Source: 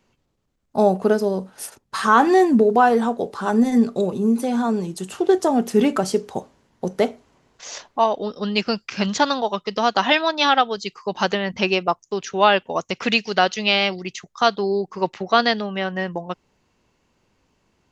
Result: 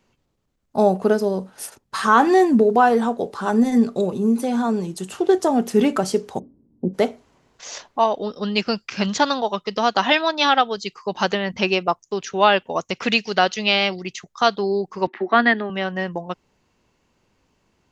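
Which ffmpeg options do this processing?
-filter_complex "[0:a]asplit=3[s0][s1][s2];[s0]afade=t=out:st=6.38:d=0.02[s3];[s1]lowpass=f=280:t=q:w=2.9,afade=t=in:st=6.38:d=0.02,afade=t=out:st=6.93:d=0.02[s4];[s2]afade=t=in:st=6.93:d=0.02[s5];[s3][s4][s5]amix=inputs=3:normalize=0,asettb=1/sr,asplit=3[s6][s7][s8];[s6]atrim=end=15.074[s9];[s7]atrim=start=15.07:end=15.7,asetpts=PTS-STARTPTS,afade=t=in:d=0.004:c=qsin,afade=t=out:st=0.626:d=0.004:c=qsin,highpass=f=230:w=0.5412,highpass=f=230:w=1.3066,equalizer=f=240:t=q:w=4:g=7,equalizer=f=360:t=q:w=4:g=9,equalizer=f=510:t=q:w=4:g=-8,equalizer=f=1800:t=q:w=4:g=9,equalizer=f=2800:t=q:w=4:g=-5,lowpass=f=3100:w=0.5412,lowpass=f=3100:w=1.3066[s10];[s8]atrim=start=15.696[s11];[s9][s10]acrossfade=d=0.004:c1=hsin:c2=qsin[s12];[s12][s11]acrossfade=d=0.004:c1=qsin:c2=hsin"

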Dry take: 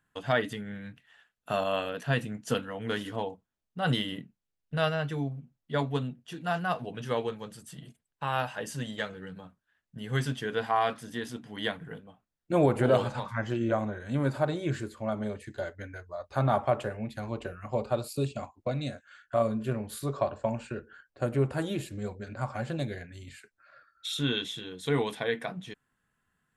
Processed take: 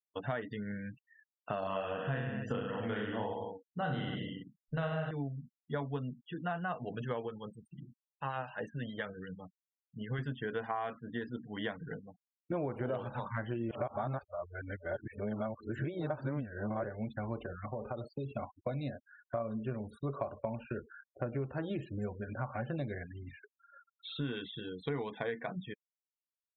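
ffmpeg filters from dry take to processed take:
-filter_complex "[0:a]asettb=1/sr,asplit=3[s0][s1][s2];[s0]atrim=end=1.604[s3];[s1]atrim=start=1.6:end=5.11,asetpts=PTS-STARTPTS,afade=t=in:d=0.004:c=qsin,afade=t=out:st=3.506:d=0.004:c=qsin,aecho=1:1:30|63|99.3|139.2|183.2|231.5|284.6:0.794|0.631|0.501|0.398|0.316|0.251|0.2,atrim=end_sample=154791[s4];[s2]atrim=start=5.106[s5];[s3][s4]acrossfade=d=0.004:c1=hsin:c2=qsin[s6];[s6][s5]acrossfade=d=0.004:c1=qsin:c2=hsin,asettb=1/sr,asplit=3[s7][s8][s9];[s7]atrim=end=7.254[s10];[s8]atrim=start=7.25:end=10.19,asetpts=PTS-STARTPTS,afade=t=in:d=0.004:c=qsin,afade=t=out:st=2.936:d=0.004:c=qsin,acrossover=split=1400[s11][s12];[s11]aeval=exprs='val(0)*(1-0.5/2+0.5/2*cos(2*PI*8.7*n/s))':c=same[s13];[s12]aeval=exprs='val(0)*(1-0.5/2-0.5/2*cos(2*PI*8.7*n/s))':c=same[s14];[s13][s14]amix=inputs=2:normalize=0[s15];[s9]atrim=start=10.186[s16];[s10][s15]acrossfade=d=0.004:c1=hsin:c2=qsin[s17];[s17][s16]acrossfade=d=0.004:c1=qsin:c2=hsin,asettb=1/sr,asplit=3[s18][s19][s20];[s18]atrim=end=11.944[s21];[s19]atrim=start=11.94:end=12.77,asetpts=PTS-STARTPTS,afade=t=in:d=0.004:c=qsin,afade=t=out:st=0.826:d=0.004:c=qsin,lowpass=3600[s22];[s20]atrim=start=12.766[s23];[s21][s22]acrossfade=d=0.004:c1=hsin:c2=qsin[s24];[s24][s23]acrossfade=d=0.004:c1=qsin:c2=hsin,asettb=1/sr,asplit=3[s25][s26][s27];[s25]atrim=end=17.444[s28];[s26]atrim=start=17.44:end=18.31,asetpts=PTS-STARTPTS,afade=t=in:d=0.004:c=qsin,afade=t=out:st=0.866:d=0.004:c=qsin,acompressor=threshold=0.02:ratio=6:attack=3.2:release=140:knee=1:detection=peak[s29];[s27]atrim=start=18.306[s30];[s28][s29]acrossfade=d=0.004:c1=hsin:c2=qsin[s31];[s31][s30]acrossfade=d=0.004:c1=qsin:c2=hsin,asettb=1/sr,asplit=3[s32][s33][s34];[s32]atrim=end=18.844[s35];[s33]atrim=start=18.84:end=19.35,asetpts=PTS-STARTPTS,afade=t=in:d=0.004:c=qsin,afade=t=out:st=0.506:d=0.004:c=qsin,equalizer=f=1300:t=o:w=0.34:g=-6.5[s36];[s34]atrim=start=19.346[s37];[s35][s36]acrossfade=d=0.004:c1=hsin:c2=qsin[s38];[s38][s37]acrossfade=d=0.004:c1=qsin:c2=hsin,asplit=3[s39][s40][s41];[s39]atrim=end=13.712[s42];[s40]atrim=start=13.708:end=16.842,asetpts=PTS-STARTPTS,areverse[s43];[s41]atrim=start=16.838[s44];[s42][s43]acrossfade=d=0.004:c1=hsin:c2=hsin[s45];[s45][s44]acrossfade=d=0.004:c1=hsin:c2=hsin,acrossover=split=2600[s46][s47];[s47]acompressor=threshold=0.00224:ratio=4:attack=1:release=60[s48];[s46][s48]amix=inputs=2:normalize=0,afftfilt=real='re*gte(hypot(re,im),0.00631)':imag='im*gte(hypot(re,im),0.00631)':win_size=1024:overlap=0.75,acompressor=threshold=0.0224:ratio=6"

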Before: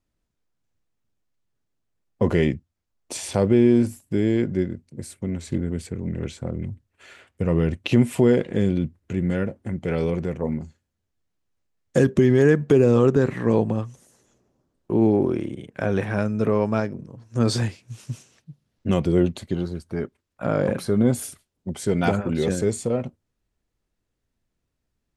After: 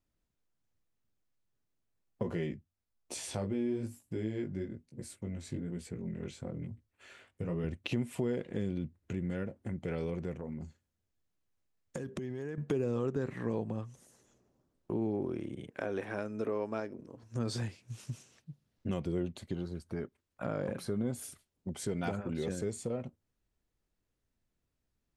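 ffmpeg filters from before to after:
-filter_complex "[0:a]asettb=1/sr,asplit=3[s0][s1][s2];[s0]atrim=end=2.234[s3];[s1]atrim=start=2.23:end=7.64,asetpts=PTS-STARTPTS,afade=t=in:d=0.004:c=qsin,afade=t=out:st=5.406:d=0.004:c=qsin,flanger=delay=16.5:depth=3.9:speed=1.1[s4];[s2]atrim=start=7.636[s5];[s3][s4]acrossfade=d=0.004:c1=hsin:c2=qsin[s6];[s6][s5]acrossfade=d=0.004:c1=qsin:c2=hsin,asettb=1/sr,asplit=3[s7][s8][s9];[s7]atrim=end=10.364[s10];[s8]atrim=start=10.36:end=12.58,asetpts=PTS-STARTPTS,afade=t=in:d=0.004:c=qsin,afade=t=out:st=2.216:d=0.004:c=qsin,acompressor=threshold=0.0398:ratio=6:attack=3.2:release=140:knee=1:detection=peak[s11];[s9]atrim=start=12.576[s12];[s10][s11]acrossfade=d=0.004:c1=hsin:c2=qsin[s13];[s13][s12]acrossfade=d=0.004:c1=qsin:c2=hsin,asettb=1/sr,asplit=3[s14][s15][s16];[s14]atrim=end=15.704[s17];[s15]atrim=start=15.7:end=17.23,asetpts=PTS-STARTPTS,afade=t=in:d=0.004:c=qsin,afade=t=out:st=1.526:d=0.004:c=qsin,lowshelf=f=220:t=q:w=1.5:g=-8.5[s18];[s16]atrim=start=17.226[s19];[s17][s18]acrossfade=d=0.004:c1=hsin:c2=qsin[s20];[s20][s19]acrossfade=d=0.004:c1=qsin:c2=hsin,acompressor=threshold=0.0224:ratio=2,volume=0.562"

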